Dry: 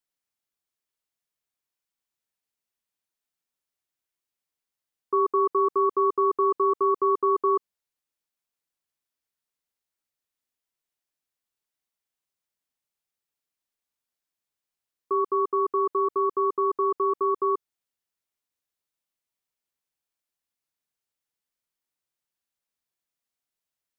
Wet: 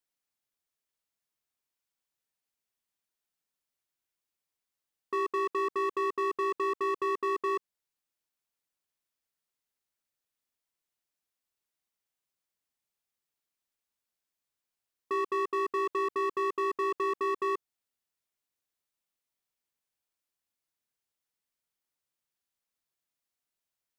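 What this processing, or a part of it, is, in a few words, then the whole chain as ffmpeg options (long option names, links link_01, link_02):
limiter into clipper: -af "alimiter=limit=-19dB:level=0:latency=1:release=286,asoftclip=type=hard:threshold=-25dB,volume=-1dB"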